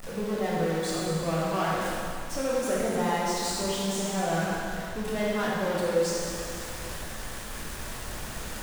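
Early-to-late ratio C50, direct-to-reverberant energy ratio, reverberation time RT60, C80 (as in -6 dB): -3.0 dB, -6.5 dB, 2.5 s, -1.5 dB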